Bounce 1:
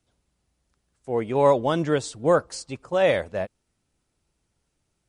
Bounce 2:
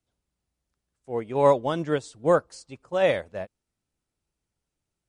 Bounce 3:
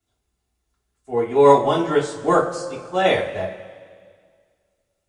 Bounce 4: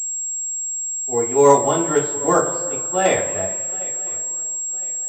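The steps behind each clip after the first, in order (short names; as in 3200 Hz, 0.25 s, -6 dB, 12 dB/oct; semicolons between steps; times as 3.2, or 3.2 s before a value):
upward expander 1.5:1, over -33 dBFS
two-slope reverb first 0.27 s, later 1.9 s, from -18 dB, DRR -8 dB; gain -1 dB
swung echo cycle 1.012 s, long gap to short 3:1, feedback 31%, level -20.5 dB; pulse-width modulation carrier 7600 Hz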